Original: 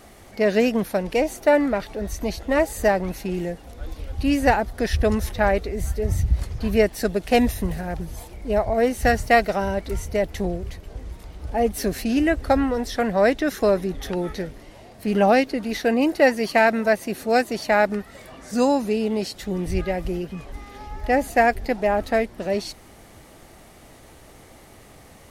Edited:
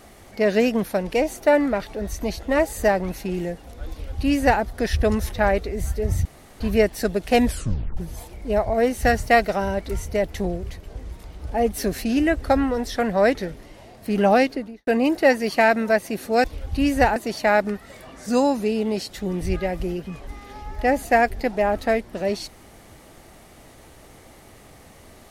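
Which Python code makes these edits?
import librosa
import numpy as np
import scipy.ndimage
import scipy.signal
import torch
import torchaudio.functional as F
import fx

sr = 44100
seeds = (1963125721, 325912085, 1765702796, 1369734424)

y = fx.studio_fade_out(x, sr, start_s=15.42, length_s=0.42)
y = fx.edit(y, sr, fx.duplicate(start_s=3.9, length_s=0.72, to_s=17.41),
    fx.room_tone_fill(start_s=6.25, length_s=0.35),
    fx.tape_stop(start_s=7.46, length_s=0.51),
    fx.cut(start_s=13.35, length_s=0.97), tone=tone)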